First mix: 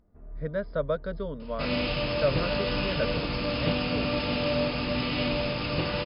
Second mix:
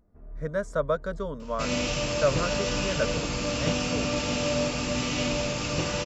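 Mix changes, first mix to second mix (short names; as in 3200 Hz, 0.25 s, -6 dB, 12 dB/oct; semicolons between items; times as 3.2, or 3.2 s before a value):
speech: add bell 1100 Hz +7 dB 1.1 oct; master: remove brick-wall FIR low-pass 5200 Hz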